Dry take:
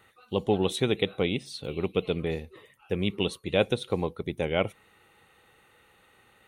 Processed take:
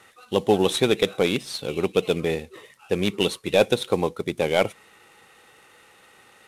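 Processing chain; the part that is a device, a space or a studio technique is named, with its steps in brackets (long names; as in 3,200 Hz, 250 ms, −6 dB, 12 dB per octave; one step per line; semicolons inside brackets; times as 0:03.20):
early wireless headset (high-pass filter 230 Hz 6 dB per octave; variable-slope delta modulation 64 kbit/s)
level +7.5 dB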